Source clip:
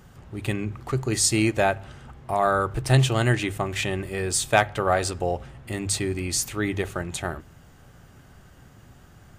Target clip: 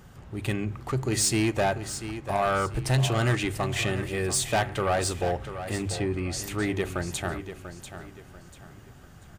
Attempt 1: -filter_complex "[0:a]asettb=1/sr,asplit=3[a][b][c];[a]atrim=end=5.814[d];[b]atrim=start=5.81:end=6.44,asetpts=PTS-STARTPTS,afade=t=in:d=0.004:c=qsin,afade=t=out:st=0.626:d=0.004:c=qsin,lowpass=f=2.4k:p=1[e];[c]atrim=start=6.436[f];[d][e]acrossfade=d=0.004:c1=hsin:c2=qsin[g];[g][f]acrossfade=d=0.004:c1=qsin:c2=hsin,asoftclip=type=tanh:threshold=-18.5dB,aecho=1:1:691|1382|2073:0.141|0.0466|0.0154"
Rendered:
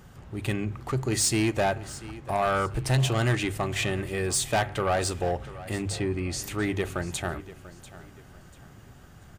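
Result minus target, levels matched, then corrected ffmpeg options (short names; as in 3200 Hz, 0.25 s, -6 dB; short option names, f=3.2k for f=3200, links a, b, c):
echo-to-direct -6 dB
-filter_complex "[0:a]asettb=1/sr,asplit=3[a][b][c];[a]atrim=end=5.814[d];[b]atrim=start=5.81:end=6.44,asetpts=PTS-STARTPTS,afade=t=in:d=0.004:c=qsin,afade=t=out:st=0.626:d=0.004:c=qsin,lowpass=f=2.4k:p=1[e];[c]atrim=start=6.436[f];[d][e]acrossfade=d=0.004:c1=hsin:c2=qsin[g];[g][f]acrossfade=d=0.004:c1=qsin:c2=hsin,asoftclip=type=tanh:threshold=-18.5dB,aecho=1:1:691|1382|2073|2764:0.282|0.093|0.0307|0.0101"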